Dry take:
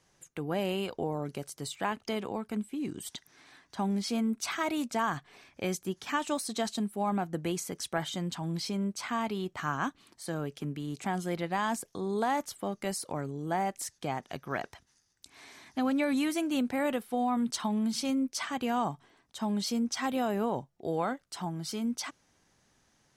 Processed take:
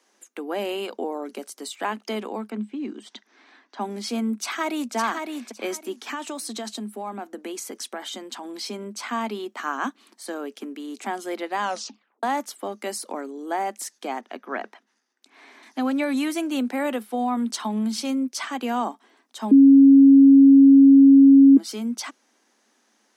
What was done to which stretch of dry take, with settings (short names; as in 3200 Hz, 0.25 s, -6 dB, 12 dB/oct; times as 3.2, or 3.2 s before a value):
2.5–3.81 air absorption 140 m
4.39–4.95 echo throw 0.56 s, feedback 20%, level -5 dB
5.98–8.45 compressor 5:1, threshold -32 dBFS
11.61 tape stop 0.62 s
14.21–15.63 tone controls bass -1 dB, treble -13 dB
19.51–21.57 bleep 274 Hz -12 dBFS
whole clip: Chebyshev high-pass 210 Hz, order 8; gain +5 dB